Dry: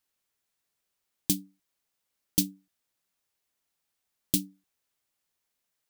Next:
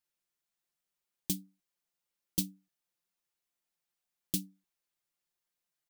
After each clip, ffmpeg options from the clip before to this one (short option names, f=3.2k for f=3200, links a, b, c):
-af "aecho=1:1:5.7:0.65,volume=-8.5dB"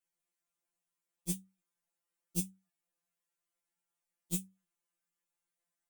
-af "afftfilt=real='re*2.83*eq(mod(b,8),0)':imag='im*2.83*eq(mod(b,8),0)':win_size=2048:overlap=0.75"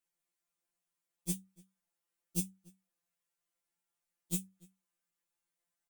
-filter_complex "[0:a]asplit=2[a][b];[b]adelay=291.5,volume=-24dB,highshelf=f=4k:g=-6.56[c];[a][c]amix=inputs=2:normalize=0"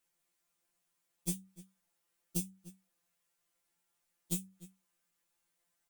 -af "acompressor=threshold=-39dB:ratio=6,volume=7dB"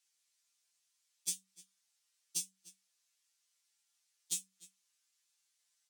-af "bandpass=f=5.3k:t=q:w=1.2:csg=0,volume=8.5dB"